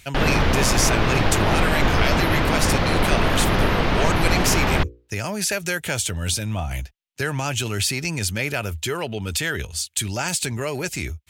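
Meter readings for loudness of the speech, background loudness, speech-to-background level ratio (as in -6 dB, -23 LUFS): -24.5 LUFS, -21.0 LUFS, -3.5 dB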